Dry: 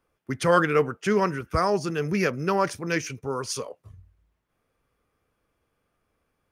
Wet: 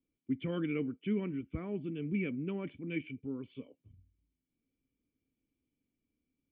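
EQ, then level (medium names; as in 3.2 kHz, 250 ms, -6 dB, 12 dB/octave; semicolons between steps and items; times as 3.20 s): dynamic bell 1.5 kHz, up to +5 dB, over -36 dBFS, Q 1.2; cascade formant filter i; 0.0 dB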